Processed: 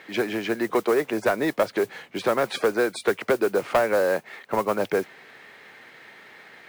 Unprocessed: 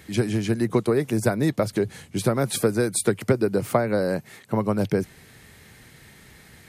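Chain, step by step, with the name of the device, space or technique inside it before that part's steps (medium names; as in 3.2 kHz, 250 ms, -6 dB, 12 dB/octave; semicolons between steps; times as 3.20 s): carbon microphone (band-pass 490–2700 Hz; saturation -20 dBFS, distortion -13 dB; modulation noise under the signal 22 dB); trim +7 dB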